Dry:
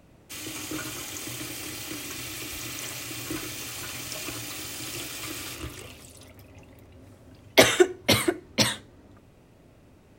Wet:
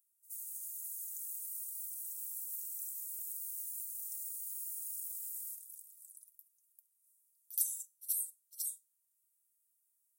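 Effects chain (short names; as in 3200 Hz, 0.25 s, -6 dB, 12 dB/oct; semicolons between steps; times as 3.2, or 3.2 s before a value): inverse Chebyshev high-pass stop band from 1900 Hz, stop band 80 dB; pre-echo 72 ms -18 dB; gain +1 dB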